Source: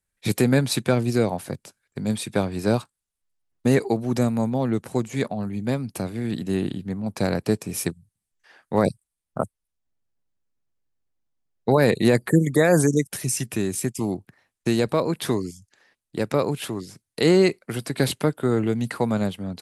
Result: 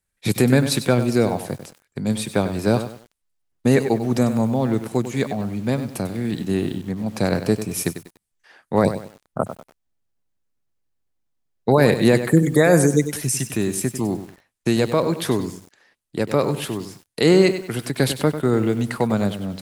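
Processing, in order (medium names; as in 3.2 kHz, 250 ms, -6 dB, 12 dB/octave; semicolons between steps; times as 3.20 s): bit-crushed delay 97 ms, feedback 35%, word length 7-bit, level -10.5 dB; trim +2.5 dB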